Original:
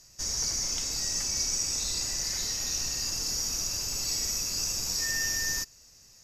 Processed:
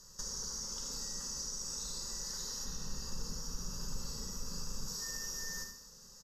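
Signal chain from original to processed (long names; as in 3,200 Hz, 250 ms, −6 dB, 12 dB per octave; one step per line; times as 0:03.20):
high-shelf EQ 3,800 Hz −7.5 dB
phaser with its sweep stopped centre 460 Hz, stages 8
four-comb reverb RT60 0.5 s, combs from 32 ms, DRR 6.5 dB
downward compressor 6 to 1, threshold −44 dBFS, peak gain reduction 12 dB
0:02.65–0:04.88: bass and treble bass +8 dB, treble −5 dB
single-tap delay 76 ms −9 dB
level +5 dB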